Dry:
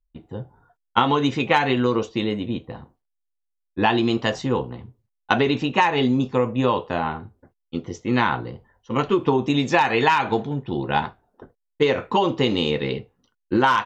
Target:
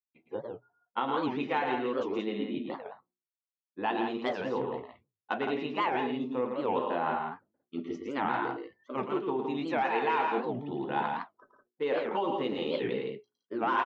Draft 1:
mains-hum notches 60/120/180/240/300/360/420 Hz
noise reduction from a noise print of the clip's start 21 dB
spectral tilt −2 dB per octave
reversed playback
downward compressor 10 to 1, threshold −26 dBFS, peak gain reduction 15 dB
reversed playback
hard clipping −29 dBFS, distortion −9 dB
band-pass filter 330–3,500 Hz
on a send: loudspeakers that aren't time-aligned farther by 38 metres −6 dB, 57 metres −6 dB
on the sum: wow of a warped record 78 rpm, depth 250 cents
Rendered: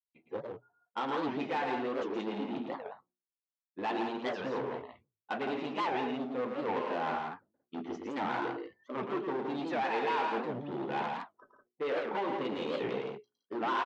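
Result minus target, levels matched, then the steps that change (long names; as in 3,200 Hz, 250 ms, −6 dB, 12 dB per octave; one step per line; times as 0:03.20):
hard clipping: distortion +29 dB
change: hard clipping −18.5 dBFS, distortion −39 dB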